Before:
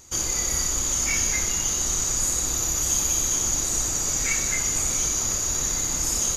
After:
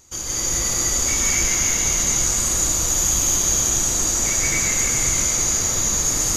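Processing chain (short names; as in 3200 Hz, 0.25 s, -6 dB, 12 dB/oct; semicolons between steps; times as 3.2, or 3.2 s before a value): plate-style reverb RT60 4.1 s, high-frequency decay 0.75×, pre-delay 0.115 s, DRR -7.5 dB; gain -3 dB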